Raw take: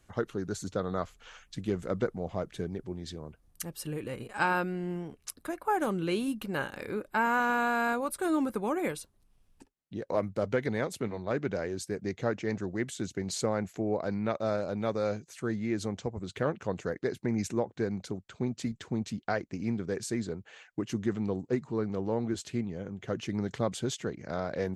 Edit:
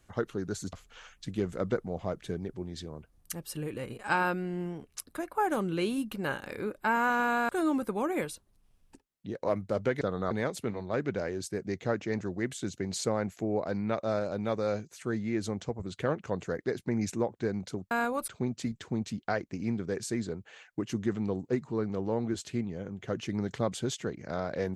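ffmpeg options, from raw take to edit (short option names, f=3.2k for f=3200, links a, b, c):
-filter_complex "[0:a]asplit=7[a][b][c][d][e][f][g];[a]atrim=end=0.732[h];[b]atrim=start=1.028:end=7.792[i];[c]atrim=start=8.158:end=10.682[j];[d]atrim=start=0.728:end=1.032[k];[e]atrim=start=10.678:end=18.282[l];[f]atrim=start=7.788:end=8.162[m];[g]atrim=start=18.278[n];[h][i]acrossfade=d=0.004:c1=hsin:c2=hsin[o];[o][j]acrossfade=d=0.004:c1=hsin:c2=hsin[p];[p][k]acrossfade=d=0.004:c1=hsin:c2=hsin[q];[q][l]acrossfade=d=0.004:c1=hsin:c2=hsin[r];[r][m]acrossfade=d=0.004:c1=hsin:c2=hsin[s];[s][n]acrossfade=d=0.004:c1=hsin:c2=hsin"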